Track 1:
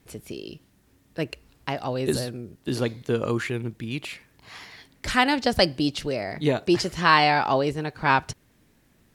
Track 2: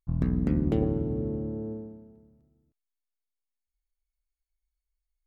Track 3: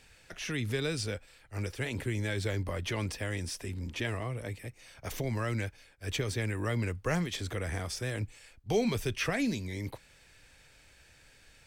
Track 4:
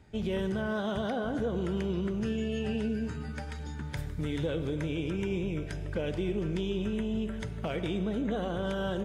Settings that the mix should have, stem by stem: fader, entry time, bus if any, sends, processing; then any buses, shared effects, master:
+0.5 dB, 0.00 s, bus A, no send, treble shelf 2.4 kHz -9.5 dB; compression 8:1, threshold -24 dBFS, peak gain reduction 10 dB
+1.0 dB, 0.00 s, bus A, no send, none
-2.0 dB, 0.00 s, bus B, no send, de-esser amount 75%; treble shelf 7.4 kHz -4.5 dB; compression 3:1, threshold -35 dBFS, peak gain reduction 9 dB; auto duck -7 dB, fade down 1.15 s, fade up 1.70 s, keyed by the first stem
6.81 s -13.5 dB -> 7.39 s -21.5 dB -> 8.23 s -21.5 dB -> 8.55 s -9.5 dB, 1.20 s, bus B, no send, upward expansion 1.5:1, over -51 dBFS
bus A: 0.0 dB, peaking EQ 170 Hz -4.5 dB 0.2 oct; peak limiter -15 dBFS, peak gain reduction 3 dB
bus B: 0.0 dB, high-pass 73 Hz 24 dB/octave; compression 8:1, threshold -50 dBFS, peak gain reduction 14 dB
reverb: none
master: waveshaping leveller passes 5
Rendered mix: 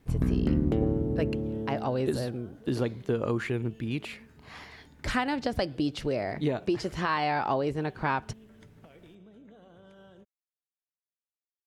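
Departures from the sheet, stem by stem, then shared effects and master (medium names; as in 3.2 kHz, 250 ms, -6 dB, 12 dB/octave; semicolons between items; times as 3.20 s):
stem 3: muted; master: missing waveshaping leveller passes 5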